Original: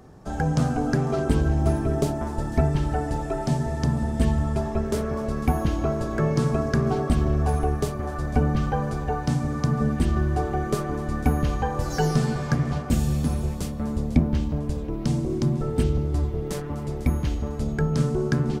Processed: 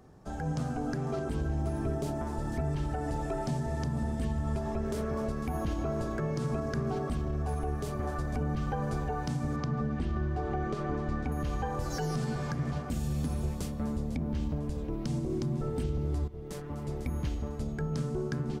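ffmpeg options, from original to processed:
ffmpeg -i in.wav -filter_complex "[0:a]asettb=1/sr,asplit=3[link_01][link_02][link_03];[link_01]atrim=end=9.564[link_04];[link_02]atrim=start=9.56:end=11.32,asetpts=PTS-STARTPTS,afade=type=in:duration=0.004:curve=qsin,afade=type=out:start_time=1.756:duration=0.004:curve=qsin,lowpass=4600[link_05];[link_03]atrim=start=11.316[link_06];[link_04][link_05]acrossfade=duration=0.004:curve1=hsin:curve2=qsin[link_07];[link_07][link_06]acrossfade=duration=0.004:curve1=qsin:curve2=hsin,asplit=2[link_08][link_09];[link_08]atrim=end=16.28,asetpts=PTS-STARTPTS,afade=type=out:start_time=16.276:duration=0.004:curve=hsin:silence=0.199526[link_10];[link_09]atrim=start=16.28,asetpts=PTS-STARTPTS,afade=type=in:duration=0.72:silence=0.199526[link_11];[link_10][link_11]concat=n=2:v=0:a=1,dynaudnorm=framelen=110:gausssize=31:maxgain=4.5dB,alimiter=limit=-16dB:level=0:latency=1:release=111,volume=-7.5dB" out.wav

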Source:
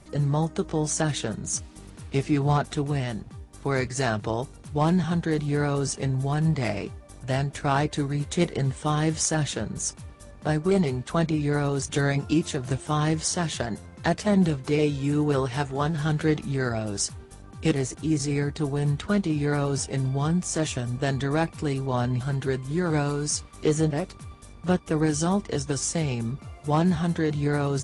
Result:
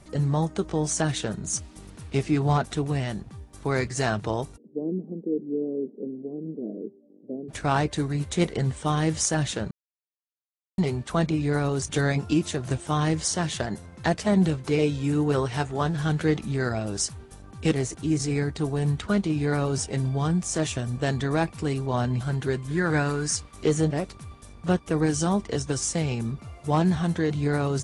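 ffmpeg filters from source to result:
ffmpeg -i in.wav -filter_complex "[0:a]asplit=3[link_01][link_02][link_03];[link_01]afade=type=out:start_time=4.56:duration=0.02[link_04];[link_02]asuperpass=centerf=320:order=8:qfactor=1.1,afade=type=in:start_time=4.56:duration=0.02,afade=type=out:start_time=7.48:duration=0.02[link_05];[link_03]afade=type=in:start_time=7.48:duration=0.02[link_06];[link_04][link_05][link_06]amix=inputs=3:normalize=0,asettb=1/sr,asplit=3[link_07][link_08][link_09];[link_07]atrim=end=22.684[link_10];[link_08]atrim=start=22.68:end=23.36,asetpts=PTS-STARTPTS,afade=type=in:duration=0.004:curve=qsin,afade=type=out:start_time=0.676:duration=0.004:curve=qsin,equalizer=frequency=1700:width_type=o:width=0.48:gain=10.5[link_11];[link_09]atrim=start=23.356[link_12];[link_10][link_11]acrossfade=duration=0.004:curve1=hsin:curve2=qsin[link_13];[link_13][link_12]acrossfade=duration=0.004:curve1=qsin:curve2=hsin,asplit=3[link_14][link_15][link_16];[link_14]atrim=end=9.71,asetpts=PTS-STARTPTS,afade=type=out:start_time=9.706:duration=0.004:curve=hsin[link_17];[link_15]atrim=start=9.71:end=10.78,asetpts=PTS-STARTPTS,volume=0[link_18];[link_16]atrim=start=10.78,asetpts=PTS-STARTPTS,afade=type=in:duration=0.004:curve=hsin[link_19];[link_17][link_18][link_19]concat=n=3:v=0:a=1" out.wav

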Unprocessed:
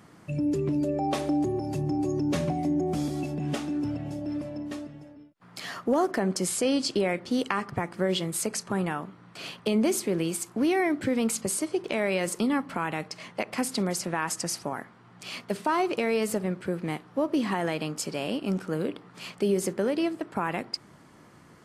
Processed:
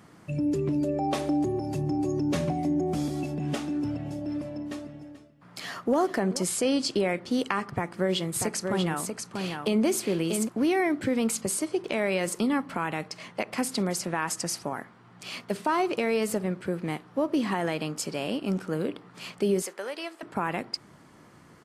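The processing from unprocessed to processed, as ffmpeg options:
ffmpeg -i in.wav -filter_complex "[0:a]asettb=1/sr,asplit=3[link_01][link_02][link_03];[link_01]atrim=end=4.354[link_04];[link_02]atrim=start=4.35:end=6.43,asetpts=PTS-STARTPTS,afade=type=in:duration=0.004:curve=qsin,afade=type=out:start_time=2.076:duration=0.004:curve=qsin,aecho=1:1:435:0.158,atrim=end_sample=91728[link_05];[link_03]atrim=start=6.426[link_06];[link_04][link_05]acrossfade=duration=0.004:curve1=hsin:curve2=qsin[link_07];[link_07][link_06]acrossfade=duration=0.004:curve1=qsin:curve2=hsin,asplit=3[link_08][link_09][link_10];[link_08]afade=type=out:start_time=8.35:duration=0.02[link_11];[link_09]aecho=1:1:639:0.562,afade=type=in:start_time=8.35:duration=0.02,afade=type=out:start_time=10.47:duration=0.02[link_12];[link_10]afade=type=in:start_time=10.47:duration=0.02[link_13];[link_11][link_12][link_13]amix=inputs=3:normalize=0,asettb=1/sr,asplit=3[link_14][link_15][link_16];[link_14]atrim=end=19.624[link_17];[link_15]atrim=start=19.62:end=20.23,asetpts=PTS-STARTPTS,afade=type=in:duration=0.004:curve=qsin,afade=type=out:start_time=0.606:duration=0.004:curve=qsin,highpass=770[link_18];[link_16]atrim=start=20.226[link_19];[link_17][link_18]acrossfade=duration=0.004:curve1=hsin:curve2=qsin[link_20];[link_20][link_19]acrossfade=duration=0.004:curve1=qsin:curve2=hsin" out.wav

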